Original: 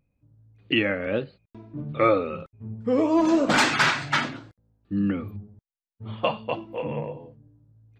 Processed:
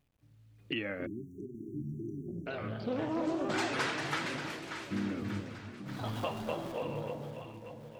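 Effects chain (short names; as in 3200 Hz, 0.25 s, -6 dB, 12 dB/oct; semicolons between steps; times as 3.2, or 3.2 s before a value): 6.05–6.72 zero-crossing step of -33.5 dBFS; compressor 3:1, threshold -31 dBFS, peak gain reduction 12 dB; requantised 12-bit, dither none; echo with dull and thin repeats by turns 0.293 s, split 820 Hz, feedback 75%, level -6 dB; echoes that change speed 0.79 s, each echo +3 st, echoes 3, each echo -6 dB; 1.06–2.47 spectral delete 430–5600 Hz; 2.27–3.43 Doppler distortion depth 0.2 ms; gain -4.5 dB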